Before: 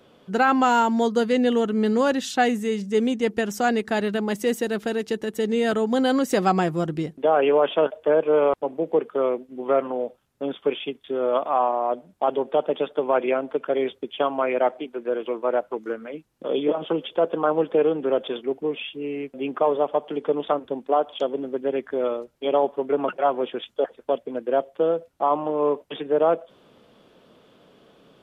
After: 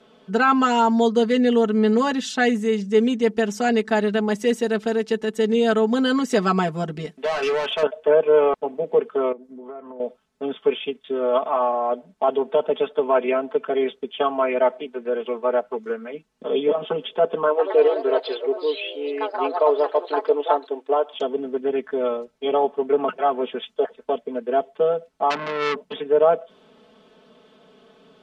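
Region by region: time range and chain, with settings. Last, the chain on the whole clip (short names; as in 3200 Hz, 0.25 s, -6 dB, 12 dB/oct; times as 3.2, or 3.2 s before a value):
7.05–7.83 tilt shelf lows -5.5 dB, about 740 Hz + hard clip -22.5 dBFS
9.32–10 bell 2800 Hz -11 dB 1 oct + compressor 3:1, threshold -39 dBFS
17.48–21.14 brick-wall FIR high-pass 270 Hz + echoes that change speed 0.11 s, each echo +3 st, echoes 2, each echo -6 dB
25.3–25.93 bell 190 Hz +13 dB 0.87 oct + core saturation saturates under 2900 Hz
whole clip: LPF 8100 Hz 12 dB/oct; low shelf 150 Hz -5.5 dB; comb 4.6 ms, depth 98%; gain -1 dB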